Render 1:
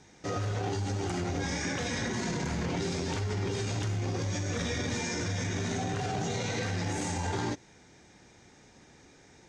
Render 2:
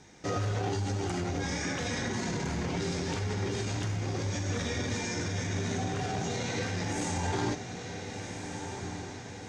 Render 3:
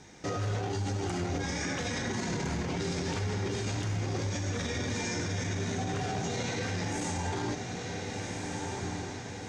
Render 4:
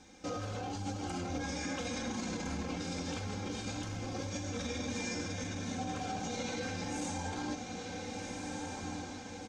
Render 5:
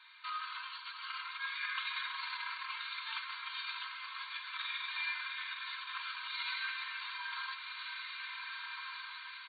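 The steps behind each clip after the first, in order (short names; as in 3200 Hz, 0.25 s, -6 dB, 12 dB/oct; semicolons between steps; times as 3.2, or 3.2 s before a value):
diffused feedback echo 1.459 s, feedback 52%, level -10 dB; vocal rider within 3 dB 2 s
limiter -26.5 dBFS, peak gain reduction 8 dB; gain +2.5 dB
notch 1900 Hz, Q 7.3; comb 3.8 ms, depth 76%; gain -6 dB
FFT band-pass 900–4600 Hz; gain +6 dB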